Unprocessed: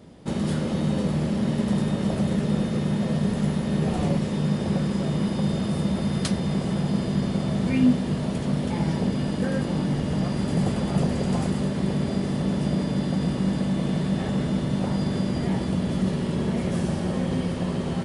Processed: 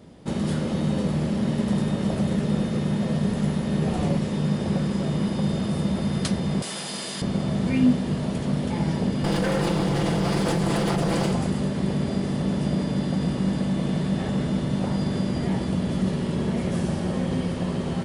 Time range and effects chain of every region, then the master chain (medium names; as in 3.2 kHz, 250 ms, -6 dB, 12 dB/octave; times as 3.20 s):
6.62–7.22 s: high-pass 210 Hz 6 dB/octave + tilt EQ +4.5 dB/octave
9.24–11.33 s: comb filter that takes the minimum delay 5.9 ms + bass shelf 230 Hz -5.5 dB + level flattener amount 100%
whole clip: none